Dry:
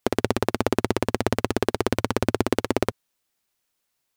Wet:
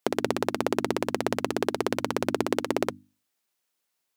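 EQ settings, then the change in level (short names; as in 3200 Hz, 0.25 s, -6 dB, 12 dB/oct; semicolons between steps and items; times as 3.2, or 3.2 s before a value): HPF 150 Hz 12 dB/oct; notches 50/100/150/200/250/300 Hz; -2.5 dB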